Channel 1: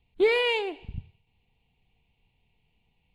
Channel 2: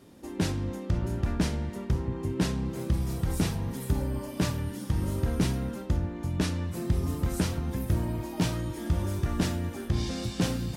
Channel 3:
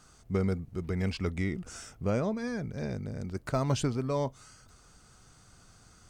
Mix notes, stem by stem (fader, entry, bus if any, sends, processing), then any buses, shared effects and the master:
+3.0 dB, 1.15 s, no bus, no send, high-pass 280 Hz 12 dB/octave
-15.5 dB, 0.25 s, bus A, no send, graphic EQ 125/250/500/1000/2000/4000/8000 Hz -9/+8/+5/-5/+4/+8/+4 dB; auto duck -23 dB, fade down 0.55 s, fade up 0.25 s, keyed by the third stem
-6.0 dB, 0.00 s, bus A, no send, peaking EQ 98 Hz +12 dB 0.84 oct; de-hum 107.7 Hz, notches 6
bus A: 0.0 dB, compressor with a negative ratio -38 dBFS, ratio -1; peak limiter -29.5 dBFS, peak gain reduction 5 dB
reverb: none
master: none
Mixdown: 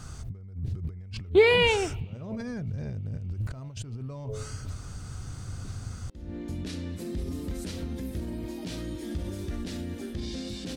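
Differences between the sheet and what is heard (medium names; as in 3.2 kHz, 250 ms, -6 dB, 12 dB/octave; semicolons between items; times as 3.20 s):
stem 3 -6.0 dB -> +1.5 dB; master: extra bass shelf 190 Hz +8 dB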